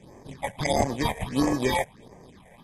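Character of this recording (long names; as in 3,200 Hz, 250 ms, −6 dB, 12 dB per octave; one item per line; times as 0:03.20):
aliases and images of a low sample rate 1,400 Hz, jitter 0%
phaser sweep stages 6, 1.5 Hz, lowest notch 300–3,700 Hz
AAC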